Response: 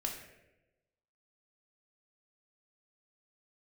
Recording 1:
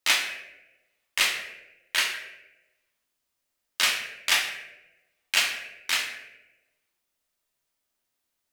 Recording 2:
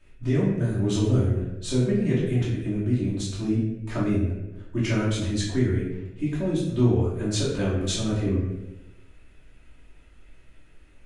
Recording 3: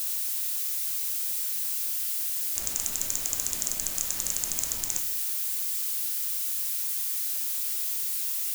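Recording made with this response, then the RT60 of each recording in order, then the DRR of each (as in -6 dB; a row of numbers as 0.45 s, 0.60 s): 1; 1.0 s, 1.0 s, 1.0 s; 0.0 dB, -9.0 dB, 5.5 dB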